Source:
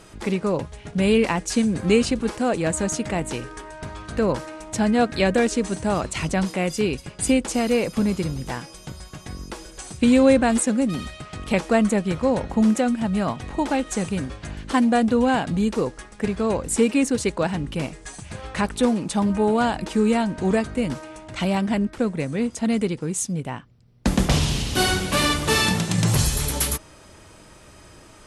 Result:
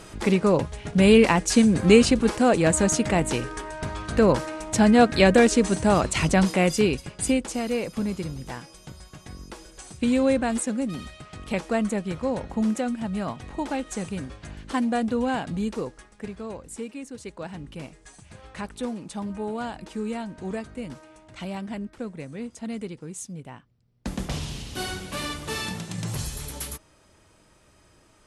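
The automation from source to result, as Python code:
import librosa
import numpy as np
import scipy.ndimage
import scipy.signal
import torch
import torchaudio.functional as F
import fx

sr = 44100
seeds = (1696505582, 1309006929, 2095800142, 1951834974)

y = fx.gain(x, sr, db=fx.line((6.68, 3.0), (7.57, -6.0), (15.68, -6.0), (17.03, -18.0), (17.6, -11.0)))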